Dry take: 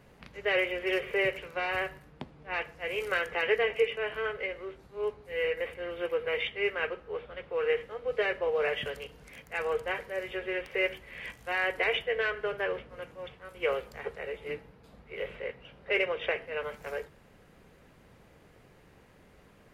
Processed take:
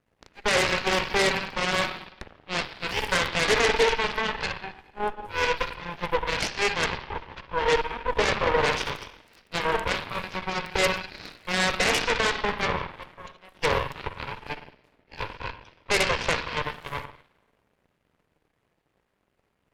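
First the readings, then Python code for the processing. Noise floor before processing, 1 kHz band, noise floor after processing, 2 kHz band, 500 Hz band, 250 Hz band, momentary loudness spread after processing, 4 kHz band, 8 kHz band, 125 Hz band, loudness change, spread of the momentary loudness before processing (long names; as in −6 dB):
−59 dBFS, +11.0 dB, −74 dBFS, +5.0 dB, +2.0 dB, +8.5 dB, 15 LU, +11.0 dB, can't be measured, +14.5 dB, +6.0 dB, 14 LU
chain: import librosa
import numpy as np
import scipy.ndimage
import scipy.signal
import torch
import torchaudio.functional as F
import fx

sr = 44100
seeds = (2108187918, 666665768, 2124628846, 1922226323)

y = fx.rev_spring(x, sr, rt60_s=1.5, pass_ms=(46, 55), chirp_ms=55, drr_db=3.5)
y = fx.cheby_harmonics(y, sr, harmonics=(3, 5, 7, 8), levels_db=(-13, -7, -9, -11), full_scale_db=-13.5)
y = y * librosa.db_to_amplitude(2.0)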